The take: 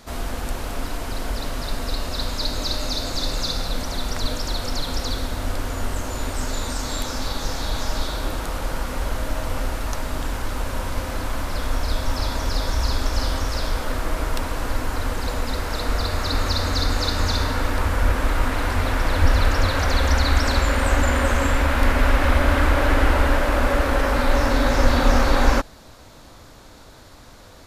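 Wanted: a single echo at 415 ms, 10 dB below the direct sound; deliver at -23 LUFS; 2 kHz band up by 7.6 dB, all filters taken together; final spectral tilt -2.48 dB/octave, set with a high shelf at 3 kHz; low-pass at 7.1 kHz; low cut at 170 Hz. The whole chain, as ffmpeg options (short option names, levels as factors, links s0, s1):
-af "highpass=170,lowpass=7100,equalizer=f=2000:t=o:g=8.5,highshelf=f=3000:g=4,aecho=1:1:415:0.316,volume=0.841"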